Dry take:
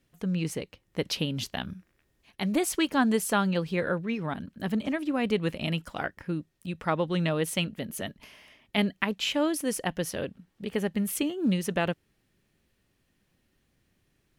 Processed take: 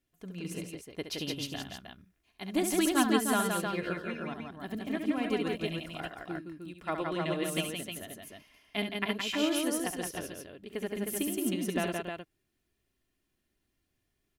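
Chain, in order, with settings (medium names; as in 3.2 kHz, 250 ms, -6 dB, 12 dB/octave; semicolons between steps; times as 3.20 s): treble shelf 7.6 kHz +5 dB; comb 2.9 ms, depth 40%; multi-tap echo 68/169/310 ms -6.5/-3/-3.5 dB; upward expansion 1.5:1, over -34 dBFS; trim -4 dB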